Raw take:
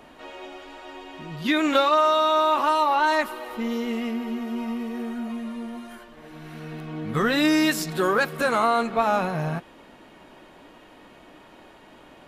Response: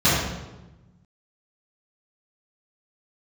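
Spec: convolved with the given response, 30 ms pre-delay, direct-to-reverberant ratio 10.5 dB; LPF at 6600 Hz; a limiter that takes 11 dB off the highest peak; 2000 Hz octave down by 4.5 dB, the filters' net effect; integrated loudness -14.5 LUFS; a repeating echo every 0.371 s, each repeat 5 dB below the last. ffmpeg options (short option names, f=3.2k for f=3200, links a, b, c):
-filter_complex "[0:a]lowpass=6.6k,equalizer=f=2k:t=o:g=-6,alimiter=limit=-20dB:level=0:latency=1,aecho=1:1:371|742|1113|1484|1855|2226|2597:0.562|0.315|0.176|0.0988|0.0553|0.031|0.0173,asplit=2[a][b];[1:a]atrim=start_sample=2205,adelay=30[c];[b][c]afir=irnorm=-1:irlink=0,volume=-31.5dB[d];[a][d]amix=inputs=2:normalize=0,volume=13dB"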